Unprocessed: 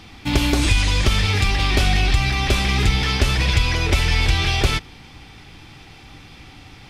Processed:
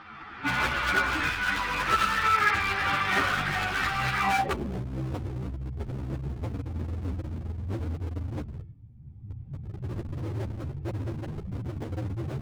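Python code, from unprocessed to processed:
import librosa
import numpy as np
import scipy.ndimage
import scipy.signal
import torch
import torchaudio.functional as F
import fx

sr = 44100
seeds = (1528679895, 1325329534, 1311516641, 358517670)

p1 = fx.recorder_agc(x, sr, target_db=-8.5, rise_db_per_s=30.0, max_gain_db=30)
p2 = fx.stretch_vocoder_free(p1, sr, factor=1.8)
p3 = fx.volume_shaper(p2, sr, bpm=132, per_beat=2, depth_db=-11, release_ms=196.0, shape='slow start')
p4 = p2 + (p3 * librosa.db_to_amplitude(-1.5))
p5 = fx.peak_eq(p4, sr, hz=150.0, db=4.5, octaves=0.65)
p6 = p5 + fx.echo_feedback(p5, sr, ms=101, feedback_pct=35, wet_db=-9, dry=0)
p7 = fx.filter_sweep_lowpass(p6, sr, from_hz=1400.0, to_hz=110.0, start_s=4.2, end_s=4.86, q=4.2)
p8 = np.clip(p7, -10.0 ** (-13.0 / 20.0), 10.0 ** (-13.0 / 20.0))
p9 = fx.tilt_eq(p8, sr, slope=3.5)
p10 = fx.ensemble(p9, sr)
y = p10 * librosa.db_to_amplitude(-2.5)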